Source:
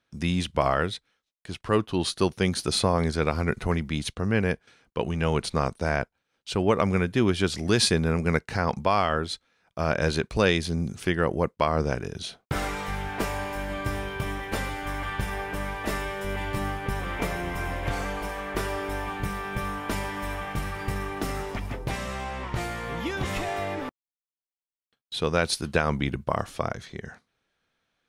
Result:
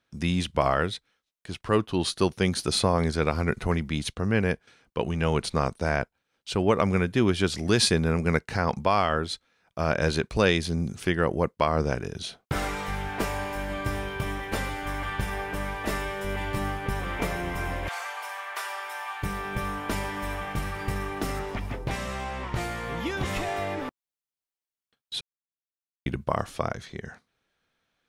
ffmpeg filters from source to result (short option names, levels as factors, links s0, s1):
-filter_complex "[0:a]asplit=3[s0][s1][s2];[s0]afade=t=out:st=17.87:d=0.02[s3];[s1]highpass=f=760:w=0.5412,highpass=f=760:w=1.3066,afade=t=in:st=17.87:d=0.02,afade=t=out:st=19.22:d=0.02[s4];[s2]afade=t=in:st=19.22:d=0.02[s5];[s3][s4][s5]amix=inputs=3:normalize=0,asettb=1/sr,asplit=3[s6][s7][s8];[s6]atrim=end=21.394[s9];[s7]atrim=start=21.39:end=21.91,asetpts=PTS-STARTPTS,afade=t=in:d=0.004:c=qsin,afade=t=out:st=0.516:d=0.004:c=qsin,acrossover=split=4800[s10][s11];[s11]acompressor=threshold=0.00178:ratio=4:attack=1:release=60[s12];[s10][s12]amix=inputs=2:normalize=0[s13];[s8]atrim=start=21.906[s14];[s9][s13]acrossfade=d=0.004:c1=hsin:c2=qsin[s15];[s15][s14]acrossfade=d=0.004:c1=qsin:c2=hsin,asplit=3[s16][s17][s18];[s16]atrim=end=25.21,asetpts=PTS-STARTPTS,afade=t=out:st=25.206:d=0.004:c=hsin[s19];[s17]atrim=start=25.21:end=26.06,asetpts=PTS-STARTPTS,volume=0[s20];[s18]atrim=start=26.06,asetpts=PTS-STARTPTS,afade=t=in:d=0.004:c=hsin[s21];[s19][s20][s21]concat=n=3:v=0:a=1"